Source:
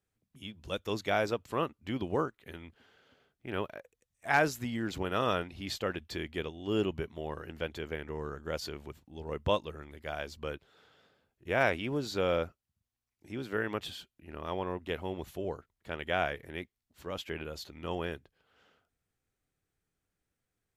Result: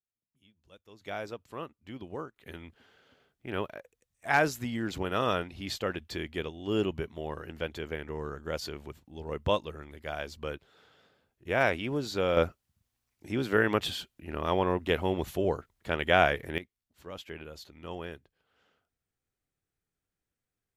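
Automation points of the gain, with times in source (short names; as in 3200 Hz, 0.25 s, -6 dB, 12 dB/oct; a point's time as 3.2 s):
-20 dB
from 1.01 s -8 dB
from 2.36 s +1.5 dB
from 12.37 s +8 dB
from 16.58 s -4 dB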